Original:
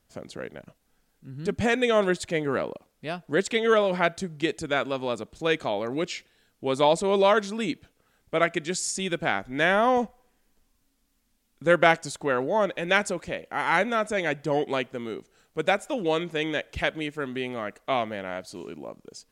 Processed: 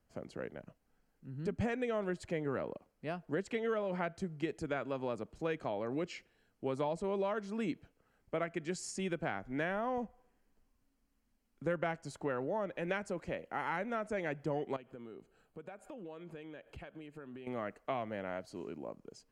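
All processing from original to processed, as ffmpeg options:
ffmpeg -i in.wav -filter_complex "[0:a]asettb=1/sr,asplit=3[link_01][link_02][link_03];[link_01]atrim=end=14.764[link_04];[link_02]atrim=start=14.76:end=17.47,asetpts=PTS-STARTPTS,afade=type=in:duration=0.004:curve=qsin,afade=type=out:start_time=2.706:duration=0.004:curve=qsin,equalizer=frequency=5700:width=5.3:gain=-12,acompressor=threshold=-39dB:ratio=8:attack=3.2:release=140:knee=1:detection=peak,bandreject=frequency=2000:width=8.6[link_05];[link_03]atrim=start=17.466[link_06];[link_04][link_05]acrossfade=duration=0.004:curve1=hsin:curve2=qsin[link_07];[link_07][link_06]acrossfade=duration=0.004:curve1=qsin:curve2=hsin,highshelf=frequency=2700:gain=-10.5,bandreject=frequency=3600:width=6.8,acrossover=split=140[link_08][link_09];[link_09]acompressor=threshold=-28dB:ratio=5[link_10];[link_08][link_10]amix=inputs=2:normalize=0,volume=-5dB" out.wav

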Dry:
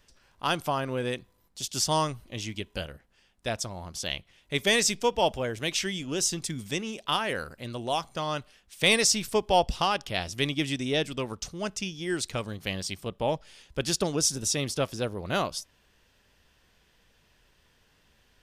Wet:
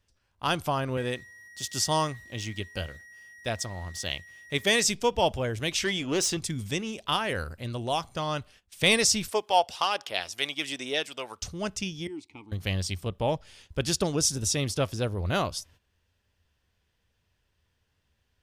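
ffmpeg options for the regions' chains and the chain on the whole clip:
ffmpeg -i in.wav -filter_complex "[0:a]asettb=1/sr,asplit=3[link_01][link_02][link_03];[link_01]atrim=end=0.974[link_04];[link_02]atrim=start=0.97:end=4.84,asetpts=PTS-STARTPTS,afade=type=in:duration=0.004:curve=qsin,afade=type=out:start_time=3.866:duration=0.004:curve=qsin,highpass=frequency=130:poles=1,aeval=exprs='val(0)+0.00631*sin(2*PI*1900*n/s)':channel_layout=same,aeval=exprs='sgn(val(0))*max(abs(val(0))-0.00178,0)':channel_layout=same[link_05];[link_03]atrim=start=4.836[link_06];[link_04][link_05]acrossfade=duration=0.004:curve1=hsin:curve2=qsin[link_07];[link_07][link_06]acrossfade=duration=0.004:curve1=qsin:curve2=hsin,asettb=1/sr,asplit=3[link_08][link_09][link_10];[link_08]atrim=end=5.844[link_11];[link_09]atrim=start=5.84:end=6.37,asetpts=PTS-STARTPTS,afade=type=in:duration=0.004:curve=qsin,afade=type=out:start_time=0.526:duration=0.004:curve=qsin,bass=frequency=250:gain=-11,treble=frequency=4000:gain=-8,aeval=exprs='0.0891*sin(PI/2*1.58*val(0)/0.0891)':channel_layout=same[link_12];[link_10]atrim=start=6.366[link_13];[link_11][link_12]acrossfade=duration=0.004:curve1=hsin:curve2=qsin[link_14];[link_14][link_13]acrossfade=duration=0.004:curve1=qsin:curve2=hsin,asettb=1/sr,asplit=3[link_15][link_16][link_17];[link_15]atrim=end=9.284[link_18];[link_16]atrim=start=9.28:end=11.42,asetpts=PTS-STARTPTS,afade=type=in:duration=0.004:curve=qsin,afade=type=out:start_time=2.136:duration=0.004:curve=qsin,highpass=530,aphaser=in_gain=1:out_gain=1:delay=1.4:decay=0.33:speed=1.3:type=sinusoidal[link_19];[link_17]atrim=start=11.416[link_20];[link_18][link_19]acrossfade=duration=0.004:curve1=hsin:curve2=qsin[link_21];[link_21][link_20]acrossfade=duration=0.004:curve1=qsin:curve2=hsin,asettb=1/sr,asplit=3[link_22][link_23][link_24];[link_22]atrim=end=12.074[link_25];[link_23]atrim=start=12.07:end=12.52,asetpts=PTS-STARTPTS,afade=type=in:duration=0.004:curve=qsin,afade=type=out:start_time=0.446:duration=0.004:curve=qsin,asplit=3[link_26][link_27][link_28];[link_26]bandpass=frequency=300:width_type=q:width=8,volume=0dB[link_29];[link_27]bandpass=frequency=870:width_type=q:width=8,volume=-6dB[link_30];[link_28]bandpass=frequency=2240:width_type=q:width=8,volume=-9dB[link_31];[link_29][link_30][link_31]amix=inputs=3:normalize=0,highshelf=frequency=4800:gain=10[link_32];[link_24]atrim=start=12.516[link_33];[link_25][link_32]acrossfade=duration=0.004:curve1=hsin:curve2=qsin[link_34];[link_34][link_33]acrossfade=duration=0.004:curve1=qsin:curve2=hsin,agate=range=-12dB:threshold=-54dB:ratio=16:detection=peak,equalizer=frequency=85:width_type=o:width=0.8:gain=13" out.wav

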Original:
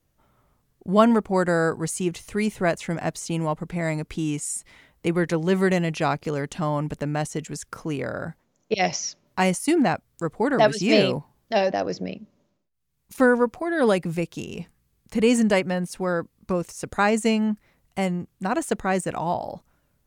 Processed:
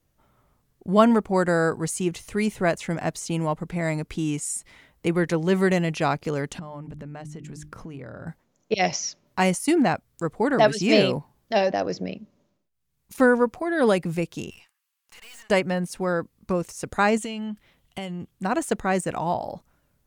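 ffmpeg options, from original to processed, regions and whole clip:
ffmpeg -i in.wav -filter_complex "[0:a]asettb=1/sr,asplit=3[link_01][link_02][link_03];[link_01]atrim=end=6.594[link_04];[link_02]atrim=start=6.59:end=8.27,asetpts=PTS-STARTPTS,afade=type=in:duration=0.004:curve=qsin,afade=type=out:start_time=1.676:duration=0.004:curve=qsin,bass=frequency=250:gain=8,treble=frequency=4000:gain=-6,bandreject=frequency=50:width_type=h:width=6,bandreject=frequency=100:width_type=h:width=6,bandreject=frequency=150:width_type=h:width=6,bandreject=frequency=200:width_type=h:width=6,bandreject=frequency=250:width_type=h:width=6,bandreject=frequency=300:width_type=h:width=6,bandreject=frequency=350:width_type=h:width=6,acompressor=threshold=-35dB:ratio=6:attack=3.2:release=140:knee=1:detection=peak[link_05];[link_03]atrim=start=8.266[link_06];[link_04][link_05]acrossfade=duration=0.004:curve1=hsin:curve2=qsin[link_07];[link_07][link_06]acrossfade=duration=0.004:curve1=qsin:curve2=hsin,asettb=1/sr,asplit=3[link_08][link_09][link_10];[link_08]atrim=end=14.504[link_11];[link_09]atrim=start=14.5:end=15.5,asetpts=PTS-STARTPTS,afade=type=in:duration=0.004:curve=qsin,afade=type=out:start_time=0.996:duration=0.004:curve=qsin,highpass=frequency=970:width=0.5412,highpass=frequency=970:width=1.3066,equalizer=frequency=2800:width_type=o:width=0.23:gain=6,aeval=exprs='(tanh(178*val(0)+0.65)-tanh(0.65))/178':channel_layout=same[link_12];[link_10]atrim=start=15.496[link_13];[link_11][link_12]acrossfade=duration=0.004:curve1=hsin:curve2=qsin[link_14];[link_14][link_13]acrossfade=duration=0.004:curve1=qsin:curve2=hsin,asettb=1/sr,asplit=3[link_15][link_16][link_17];[link_15]atrim=end=17.174[link_18];[link_16]atrim=start=17.17:end=18.31,asetpts=PTS-STARTPTS,afade=type=in:duration=0.004:curve=qsin,afade=type=out:start_time=1.136:duration=0.004:curve=qsin,equalizer=frequency=3200:width_type=o:width=0.46:gain=12,acompressor=threshold=-28dB:ratio=12:attack=3.2:release=140:knee=1:detection=peak[link_19];[link_17]atrim=start=18.306[link_20];[link_18][link_19]acrossfade=duration=0.004:curve1=hsin:curve2=qsin[link_21];[link_21][link_20]acrossfade=duration=0.004:curve1=qsin:curve2=hsin" out.wav

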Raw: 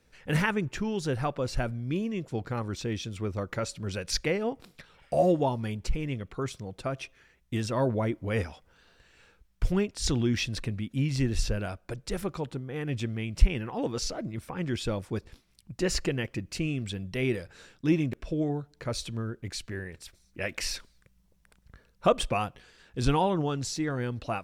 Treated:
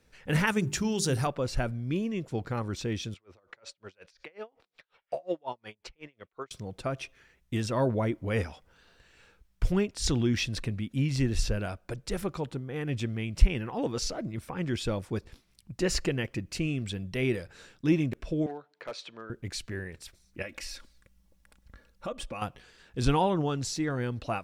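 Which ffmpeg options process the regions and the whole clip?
ffmpeg -i in.wav -filter_complex "[0:a]asettb=1/sr,asplit=3[link_01][link_02][link_03];[link_01]atrim=end=0.474[link_04];[link_02]atrim=start=0.47:end=1.27,asetpts=PTS-STARTPTS,afade=type=in:duration=0.004:curve=qsin,afade=type=out:start_time=0.796:duration=0.004:curve=qsin,highpass=52,bass=frequency=250:gain=4,treble=frequency=4000:gain=14,bandreject=frequency=50:width_type=h:width=6,bandreject=frequency=100:width_type=h:width=6,bandreject=frequency=150:width_type=h:width=6,bandreject=frequency=200:width_type=h:width=6,bandreject=frequency=250:width_type=h:width=6,bandreject=frequency=300:width_type=h:width=6,bandreject=frequency=350:width_type=h:width=6,bandreject=frequency=400:width_type=h:width=6[link_05];[link_03]atrim=start=1.266[link_06];[link_04][link_05]acrossfade=duration=0.004:curve1=hsin:curve2=qsin[link_07];[link_07][link_06]acrossfade=duration=0.004:curve1=qsin:curve2=hsin,asettb=1/sr,asplit=3[link_08][link_09][link_10];[link_08]atrim=end=3.144[link_11];[link_09]atrim=start=3.14:end=6.51,asetpts=PTS-STARTPTS,afade=type=in:duration=0.004:curve=qsin,afade=type=out:start_time=3.366:duration=0.004:curve=qsin,acrossover=split=400 5200:gain=0.141 1 0.178[link_12][link_13][link_14];[link_12][link_13][link_14]amix=inputs=3:normalize=0,aeval=exprs='val(0)*pow(10,-35*(0.5-0.5*cos(2*PI*5.5*n/s))/20)':channel_layout=same[link_15];[link_10]atrim=start=6.506[link_16];[link_11][link_15]acrossfade=duration=0.004:curve1=hsin:curve2=qsin[link_17];[link_17][link_16]acrossfade=duration=0.004:curve1=qsin:curve2=hsin,asettb=1/sr,asplit=3[link_18][link_19][link_20];[link_18]atrim=end=18.464[link_21];[link_19]atrim=start=18.46:end=19.3,asetpts=PTS-STARTPTS,afade=type=in:duration=0.004:curve=qsin,afade=type=out:start_time=0.836:duration=0.004:curve=qsin,highpass=530,lowpass=3300,asoftclip=type=hard:threshold=-31.5dB[link_22];[link_20]atrim=start=19.296[link_23];[link_21][link_22]acrossfade=duration=0.004:curve1=hsin:curve2=qsin[link_24];[link_24][link_23]acrossfade=duration=0.004:curve1=qsin:curve2=hsin,asettb=1/sr,asplit=3[link_25][link_26][link_27];[link_25]atrim=end=20.424[link_28];[link_26]atrim=start=20.42:end=22.42,asetpts=PTS-STARTPTS,afade=type=in:duration=0.004:curve=qsin,afade=type=out:start_time=1.996:duration=0.004:curve=qsin,aecho=1:1:3.6:0.48,atrim=end_sample=88200,acompressor=threshold=-43dB:ratio=2:attack=3.2:release=140:knee=1:detection=peak[link_29];[link_27]atrim=start=22.416[link_30];[link_28][link_29]acrossfade=duration=0.004:curve1=hsin:curve2=qsin[link_31];[link_31][link_30]acrossfade=duration=0.004:curve1=qsin:curve2=hsin" out.wav

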